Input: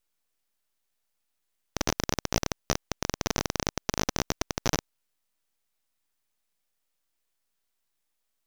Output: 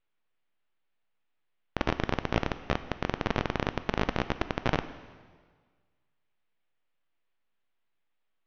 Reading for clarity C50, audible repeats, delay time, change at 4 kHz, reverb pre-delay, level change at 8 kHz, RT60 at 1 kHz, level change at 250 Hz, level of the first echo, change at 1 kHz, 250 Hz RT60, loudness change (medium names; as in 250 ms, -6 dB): 13.0 dB, no echo, no echo, -6.0 dB, 6 ms, -22.5 dB, 1.6 s, +1.0 dB, no echo, +1.5 dB, 1.7 s, -1.0 dB